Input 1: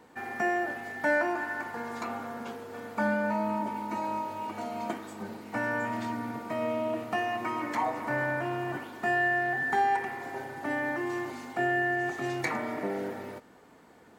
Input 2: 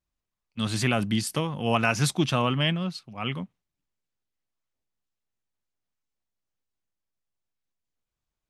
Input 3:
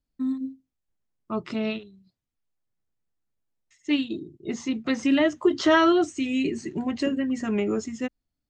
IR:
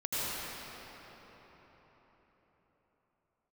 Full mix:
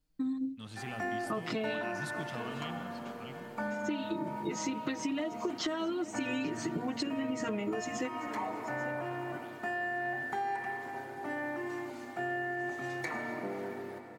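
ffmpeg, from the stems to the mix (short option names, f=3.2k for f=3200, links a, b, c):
-filter_complex "[0:a]adelay=600,volume=-7.5dB,asplit=2[a][b];[b]volume=-14dB[c];[1:a]volume=-19.5dB,asplit=2[d][e];[e]volume=-16dB[f];[2:a]aecho=1:1:6.4:0.91,acompressor=threshold=-28dB:ratio=10,volume=1.5dB,asplit=2[g][h];[h]volume=-17dB[i];[3:a]atrim=start_sample=2205[j];[c][f]amix=inputs=2:normalize=0[k];[k][j]afir=irnorm=-1:irlink=0[l];[i]aecho=0:1:837:1[m];[a][d][g][l][m]amix=inputs=5:normalize=0,acompressor=threshold=-31dB:ratio=5"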